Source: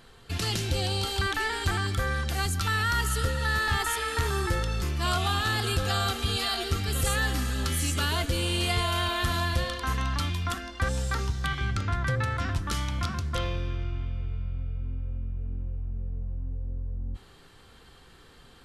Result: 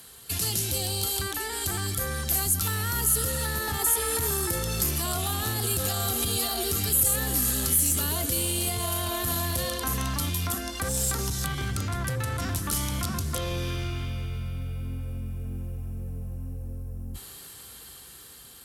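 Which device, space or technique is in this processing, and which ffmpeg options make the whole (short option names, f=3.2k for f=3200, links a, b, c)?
FM broadcast chain: -filter_complex "[0:a]highpass=f=46:w=0.5412,highpass=f=46:w=1.3066,dynaudnorm=f=830:g=7:m=9dB,acrossover=split=100|860[a][b][c];[a]acompressor=threshold=-34dB:ratio=4[d];[b]acompressor=threshold=-26dB:ratio=4[e];[c]acompressor=threshold=-37dB:ratio=4[f];[d][e][f]amix=inputs=3:normalize=0,aemphasis=mode=production:type=50fm,alimiter=limit=-19dB:level=0:latency=1:release=18,asoftclip=type=hard:threshold=-23dB,lowpass=f=15k:w=0.5412,lowpass=f=15k:w=1.3066,aemphasis=mode=production:type=50fm,volume=-1.5dB"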